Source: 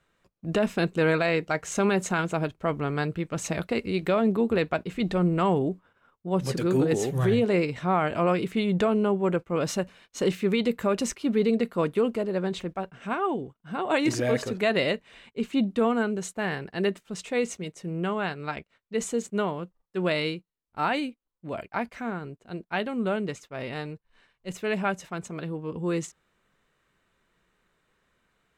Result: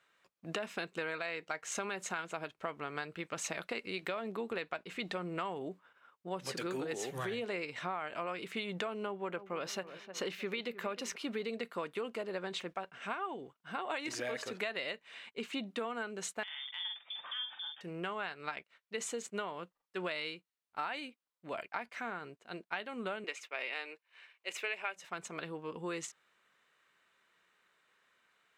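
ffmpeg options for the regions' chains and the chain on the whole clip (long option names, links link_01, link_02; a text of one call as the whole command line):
ffmpeg -i in.wav -filter_complex "[0:a]asettb=1/sr,asplit=3[link_01][link_02][link_03];[link_01]atrim=end=9.064[link_04];[link_02]atrim=start=9.06:end=11.16,asetpts=PTS-STARTPTS,afade=type=in:duration=0.004:curve=qsin,afade=type=out:start_time=2.096:duration=0.004:curve=qsin,equalizer=frequency=8200:width_type=o:width=0.69:gain=-7.5,asplit=2[link_05][link_06];[link_06]adelay=308,lowpass=frequency=1400:poles=1,volume=-15dB,asplit=2[link_07][link_08];[link_08]adelay=308,lowpass=frequency=1400:poles=1,volume=0.4,asplit=2[link_09][link_10];[link_10]adelay=308,lowpass=frequency=1400:poles=1,volume=0.4,asplit=2[link_11][link_12];[link_12]adelay=308,lowpass=frequency=1400:poles=1,volume=0.4[link_13];[link_05][link_07][link_09][link_11][link_13]amix=inputs=5:normalize=0,atrim=end_sample=92610[link_14];[link_03]atrim=start=11.156[link_15];[link_04][link_14]acrossfade=duration=0.004:curve1=hsin:curve2=qsin[link_16];[link_16][link_15]acrossfade=duration=0.004:curve1=qsin:curve2=hsin,asettb=1/sr,asplit=3[link_17][link_18][link_19];[link_17]atrim=end=16.434[link_20];[link_18]atrim=start=16.43:end=17.81,asetpts=PTS-STARTPTS,afade=type=in:duration=0.004:curve=qsin,afade=type=out:start_time=1.376:duration=0.004:curve=qsin,lowpass=frequency=3100:width_type=q:width=0.5098,lowpass=frequency=3100:width_type=q:width=0.6013,lowpass=frequency=3100:width_type=q:width=0.9,lowpass=frequency=3100:width_type=q:width=2.563,afreqshift=-3700,acompressor=threshold=-44dB:ratio=3:attack=3.2:release=140:knee=1:detection=peak,asplit=2[link_21][link_22];[link_22]adelay=46,volume=-4.5dB[link_23];[link_21][link_23]amix=inputs=2:normalize=0,atrim=end_sample=60858[link_24];[link_19]atrim=start=17.806[link_25];[link_20][link_24]acrossfade=duration=0.004:curve1=hsin:curve2=qsin[link_26];[link_26][link_25]acrossfade=duration=0.004:curve1=qsin:curve2=hsin,asettb=1/sr,asplit=3[link_27][link_28][link_29];[link_27]atrim=end=23.244[link_30];[link_28]atrim=start=23.24:end=24.96,asetpts=PTS-STARTPTS,afade=type=in:duration=0.004:curve=qsin,afade=type=out:start_time=1.716:duration=0.004:curve=qsin,highpass=frequency=320:width=0.5412,highpass=frequency=320:width=1.3066,equalizer=frequency=2400:width_type=o:width=0.57:gain=9[link_31];[link_29]atrim=start=24.956[link_32];[link_30][link_31]acrossfade=duration=0.004:curve1=hsin:curve2=qsin[link_33];[link_33][link_32]acrossfade=duration=0.004:curve1=qsin:curve2=hsin,highpass=frequency=560:poles=1,equalizer=frequency=2300:width=0.38:gain=6,acompressor=threshold=-31dB:ratio=6,volume=-4dB" out.wav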